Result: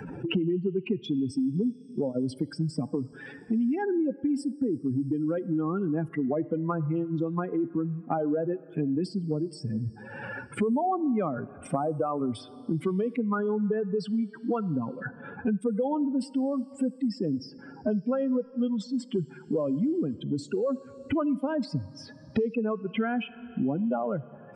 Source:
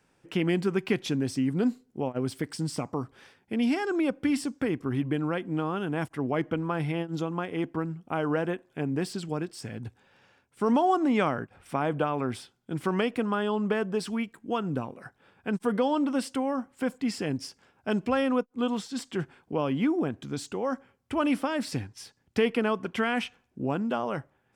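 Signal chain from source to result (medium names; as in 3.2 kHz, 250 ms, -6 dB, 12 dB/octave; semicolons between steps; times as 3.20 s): spectral contrast enhancement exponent 2.8; plate-style reverb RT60 1.6 s, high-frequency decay 0.95×, DRR 20 dB; three bands compressed up and down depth 100%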